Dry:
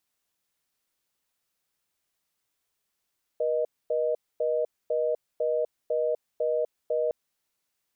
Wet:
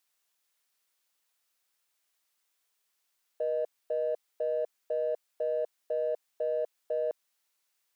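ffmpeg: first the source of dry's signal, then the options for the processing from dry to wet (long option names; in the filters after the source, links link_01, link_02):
-f lavfi -i "aevalsrc='0.0501*(sin(2*PI*480*t)+sin(2*PI*620*t))*clip(min(mod(t,0.5),0.25-mod(t,0.5))/0.005,0,1)':duration=3.71:sample_rate=44100"
-filter_complex "[0:a]highpass=frequency=780:poles=1,asplit=2[link_01][link_02];[link_02]asoftclip=type=tanh:threshold=-37dB,volume=-10dB[link_03];[link_01][link_03]amix=inputs=2:normalize=0"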